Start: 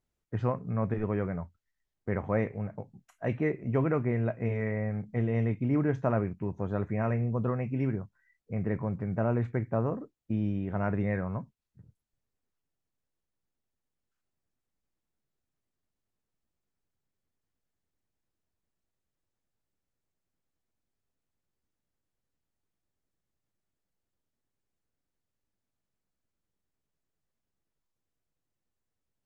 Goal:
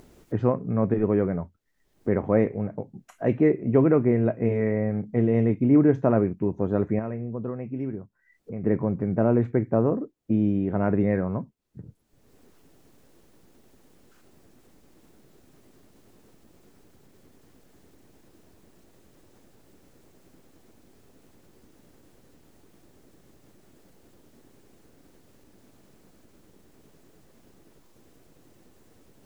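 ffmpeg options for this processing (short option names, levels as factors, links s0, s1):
-filter_complex "[0:a]acompressor=mode=upward:threshold=0.0158:ratio=2.5,equalizer=f=330:w=0.64:g=11,asettb=1/sr,asplit=3[s0][s1][s2];[s0]atrim=end=6.994[s3];[s1]atrim=start=6.99:end=8.64,asetpts=PTS-STARTPTS,afade=t=in:d=0.004:c=qsin,afade=t=out:st=1.646:d=0.004:c=qsin,acompressor=threshold=0.00631:ratio=1.5[s4];[s2]atrim=start=8.636[s5];[s3][s4]acrossfade=d=0.004:c1=hsin:c2=qsin[s6];[s6][s5]acrossfade=d=0.004:c1=qsin:c2=hsin"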